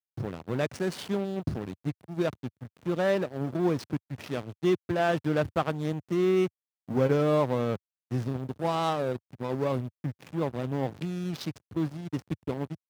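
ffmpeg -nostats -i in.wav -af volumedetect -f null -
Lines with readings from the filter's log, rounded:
mean_volume: -29.7 dB
max_volume: -12.2 dB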